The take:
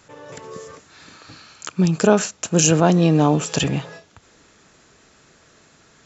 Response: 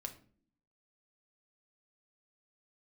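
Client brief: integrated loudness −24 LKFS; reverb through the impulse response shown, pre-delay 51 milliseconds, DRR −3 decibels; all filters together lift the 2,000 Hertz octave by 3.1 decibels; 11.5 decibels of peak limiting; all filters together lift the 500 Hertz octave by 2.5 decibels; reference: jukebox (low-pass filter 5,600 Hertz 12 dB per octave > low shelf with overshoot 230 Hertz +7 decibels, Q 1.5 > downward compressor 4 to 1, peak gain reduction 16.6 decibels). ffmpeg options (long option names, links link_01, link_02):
-filter_complex "[0:a]equalizer=frequency=500:width_type=o:gain=4.5,equalizer=frequency=2000:width_type=o:gain=4.5,alimiter=limit=-10dB:level=0:latency=1,asplit=2[link_01][link_02];[1:a]atrim=start_sample=2205,adelay=51[link_03];[link_02][link_03]afir=irnorm=-1:irlink=0,volume=6dB[link_04];[link_01][link_04]amix=inputs=2:normalize=0,lowpass=5600,lowshelf=frequency=230:width_type=q:width=1.5:gain=7,acompressor=threshold=-22dB:ratio=4,volume=1dB"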